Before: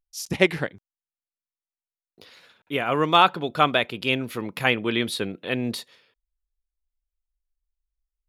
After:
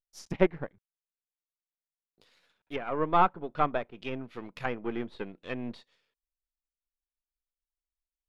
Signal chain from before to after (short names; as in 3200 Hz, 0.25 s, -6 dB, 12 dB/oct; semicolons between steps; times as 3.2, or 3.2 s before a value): half-wave gain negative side -7 dB; treble ducked by the level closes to 1200 Hz, closed at -23.5 dBFS; upward expander 1.5:1, over -43 dBFS